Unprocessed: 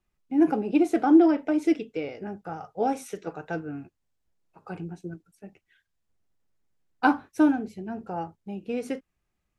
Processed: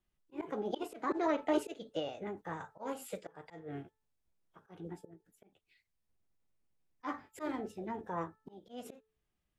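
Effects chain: formant shift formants +4 st; auto swell 0.272 s; de-hum 437.2 Hz, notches 4; gain -5.5 dB

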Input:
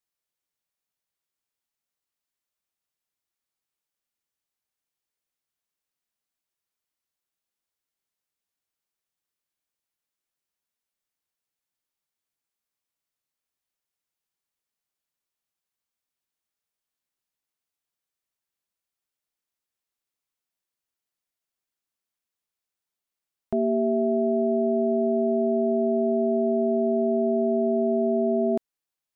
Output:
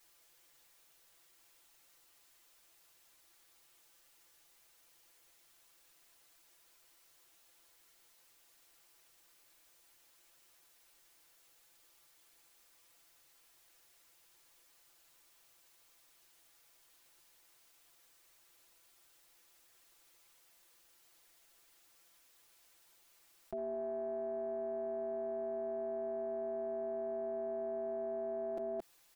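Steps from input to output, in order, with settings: gate -19 dBFS, range -24 dB; bell 180 Hz -14 dB 0.48 oct; comb 5.9 ms, depth 94%; on a send: echo 0.221 s -12.5 dB; on the sum: fast leveller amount 100%; gain +2 dB

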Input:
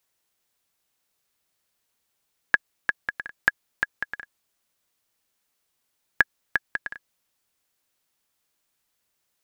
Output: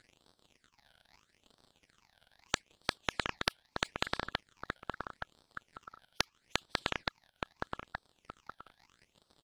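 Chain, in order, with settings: spectral noise reduction 17 dB; dynamic EQ 3000 Hz, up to +7 dB, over -40 dBFS, Q 0.86; crackle 69/s -63 dBFS; compressor 5:1, threshold -23 dBFS, peak gain reduction 12 dB; phaser stages 8, 0.78 Hz, lowest notch 350–2900 Hz; formant shift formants -4 st; air absorption 77 m; feedback echo 0.872 s, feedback 16%, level -19.5 dB; spectral compressor 10:1; gain +1 dB

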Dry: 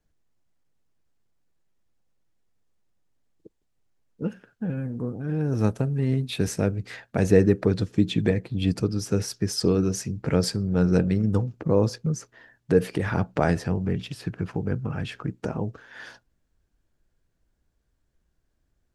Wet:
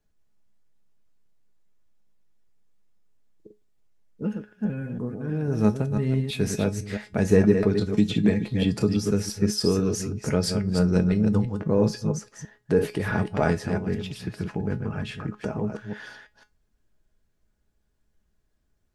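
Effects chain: reverse delay 0.166 s, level -6.5 dB; in parallel at -11 dB: soft clip -13 dBFS, distortion -14 dB; on the sum: resonator 210 Hz, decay 0.19 s, harmonics all, mix 70%; 7.97–9.11 three-band squash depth 70%; gain +4.5 dB

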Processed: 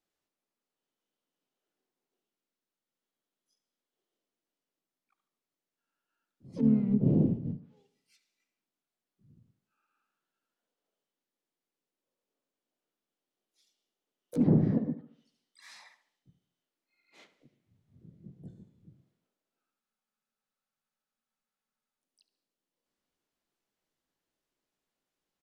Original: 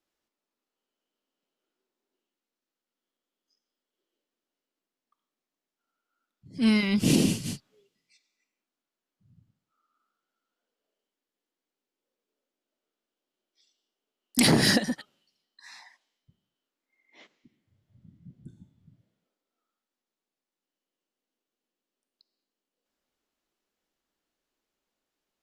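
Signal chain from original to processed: harmoniser -7 st -13 dB, +3 st -5 dB, +12 st -8 dB; bell 150 Hz +6 dB 0.92 oct; treble ducked by the level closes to 410 Hz, closed at -24 dBFS; on a send: tape echo 72 ms, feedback 48%, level -12.5 dB, low-pass 3200 Hz; on the sum: spectral freeze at 19.83, 2.18 s; gain -5.5 dB

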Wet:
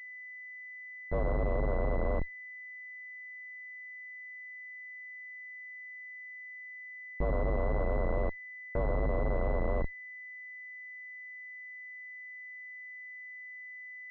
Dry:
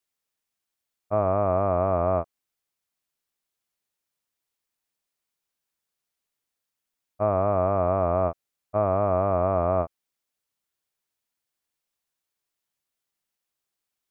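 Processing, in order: frequency shift -59 Hz; Schmitt trigger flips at -22.5 dBFS; pulse-width modulation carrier 2000 Hz; gain +1.5 dB

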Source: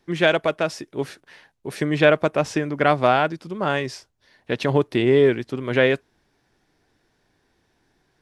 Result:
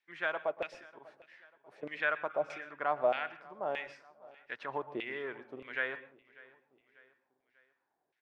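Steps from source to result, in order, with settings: 0.91–1.83 auto swell 0.102 s; 2.33–2.57 spectral repair 1100–3600 Hz before; LFO band-pass saw down 1.6 Hz 530–2500 Hz; feedback echo 0.593 s, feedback 48%, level -22 dB; on a send at -15 dB: reverb RT60 0.30 s, pre-delay 0.111 s; on the sum: gain -8 dB

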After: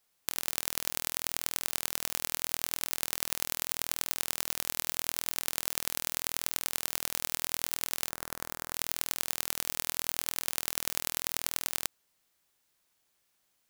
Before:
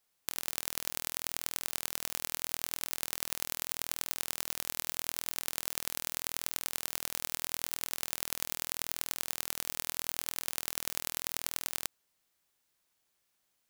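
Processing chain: 8.09–8.74 resonant high shelf 2000 Hz -7.5 dB, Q 1.5; gain +3 dB

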